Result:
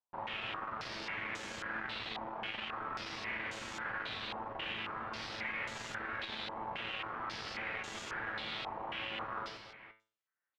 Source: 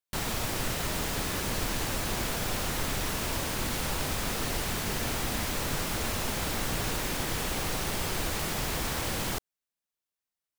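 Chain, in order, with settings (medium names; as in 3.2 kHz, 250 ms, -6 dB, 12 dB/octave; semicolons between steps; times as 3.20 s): distance through air 490 m; on a send: reverse bouncing-ball echo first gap 40 ms, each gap 1.5×, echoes 5; on the sum: one-sided clip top -37 dBFS; tilt EQ +3.5 dB/octave; feedback comb 110 Hz, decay 0.4 s, harmonics all, mix 80%; reverse; compression, threshold -49 dBFS, peak gain reduction 8 dB; reverse; step-sequenced low-pass 3.7 Hz 910–6900 Hz; trim +7.5 dB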